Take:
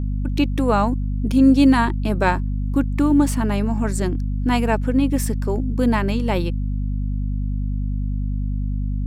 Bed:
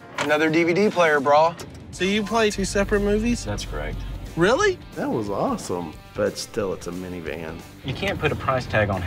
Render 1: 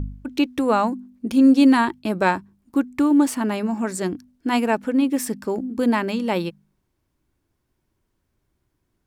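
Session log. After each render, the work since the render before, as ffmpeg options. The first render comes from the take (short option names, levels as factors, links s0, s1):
-af "bandreject=f=50:t=h:w=4,bandreject=f=100:t=h:w=4,bandreject=f=150:t=h:w=4,bandreject=f=200:t=h:w=4,bandreject=f=250:t=h:w=4"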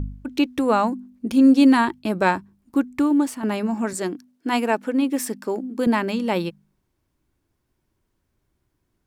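-filter_complex "[0:a]asettb=1/sr,asplit=3[s0][s1][s2];[s0]atrim=end=3.934[s3];[s1]atrim=start=3.93:end=5.87,asetpts=PTS-STARTPTS,afade=t=in:d=0.004:c=qsin,afade=t=out:st=1.936:d=0.004:c=qsin,highpass=230[s4];[s2]atrim=start=5.866[s5];[s3][s4]acrossfade=d=0.004:c1=hsin:c2=qsin[s6];[s6][s5]acrossfade=d=0.004:c1=qsin:c2=hsin,asplit=2[s7][s8];[s7]atrim=end=3.43,asetpts=PTS-STARTPTS,afade=t=out:st=2.79:d=0.64:c=qsin:silence=0.354813[s9];[s8]atrim=start=3.43,asetpts=PTS-STARTPTS,afade=t=in:d=0.004:c=hsin:silence=0.354813[s10];[s9][s10]concat=n=2:v=0:a=1"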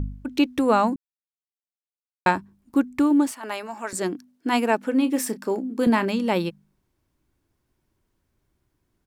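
-filter_complex "[0:a]asettb=1/sr,asplit=3[s0][s1][s2];[s0]atrim=end=3.314[s3];[s1]atrim=start=3.31:end=3.93,asetpts=PTS-STARTPTS,afade=t=in:d=0.004:c=qsin,afade=t=out:st=0.616:d=0.004:c=qsin,highpass=650[s4];[s2]atrim=start=3.926[s5];[s3][s4]acrossfade=d=0.004:c1=hsin:c2=qsin[s6];[s6][s5]acrossfade=d=0.004:c1=qsin:c2=hsin,asplit=3[s7][s8][s9];[s7]afade=t=out:st=4.91:d=0.02[s10];[s8]asplit=2[s11][s12];[s12]adelay=31,volume=0.224[s13];[s11][s13]amix=inputs=2:normalize=0,afade=t=in:st=4.91:d=0.02,afade=t=out:st=6.07:d=0.02[s14];[s9]afade=t=in:st=6.07:d=0.02[s15];[s10][s14][s15]amix=inputs=3:normalize=0,asplit=3[s16][s17][s18];[s16]atrim=end=0.96,asetpts=PTS-STARTPTS,afade=t=out:st=0.956:d=0.004:c=hsin[s19];[s17]atrim=start=0.96:end=2.26,asetpts=PTS-STARTPTS,volume=0[s20];[s18]atrim=start=2.26,asetpts=PTS-STARTPTS,afade=t=in:d=0.004:c=hsin[s21];[s19][s20][s21]concat=n=3:v=0:a=1"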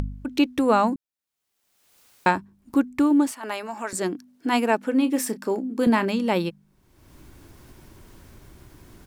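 -af "acompressor=mode=upward:threshold=0.0447:ratio=2.5"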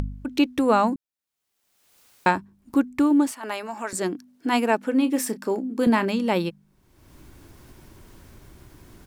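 -af anull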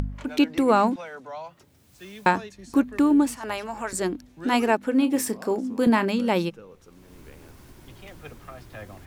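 -filter_complex "[1:a]volume=0.0891[s0];[0:a][s0]amix=inputs=2:normalize=0"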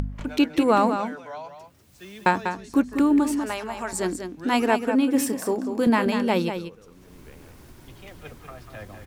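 -af "aecho=1:1:194:0.398"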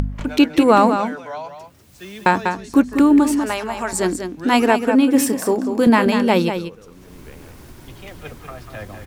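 -af "volume=2.11,alimiter=limit=0.891:level=0:latency=1"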